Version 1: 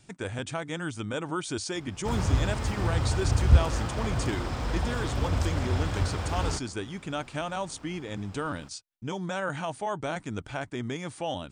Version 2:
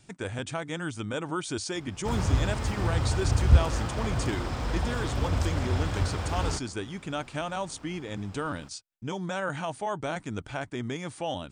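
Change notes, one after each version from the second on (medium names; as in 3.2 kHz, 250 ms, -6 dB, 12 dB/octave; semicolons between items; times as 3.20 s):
no change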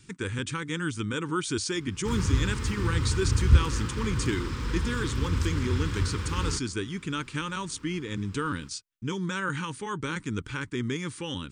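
speech +3.5 dB; master: add Butterworth band-stop 680 Hz, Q 1.2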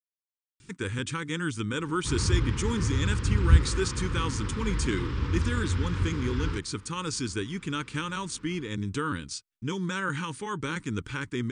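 speech: entry +0.60 s; background: add distance through air 140 m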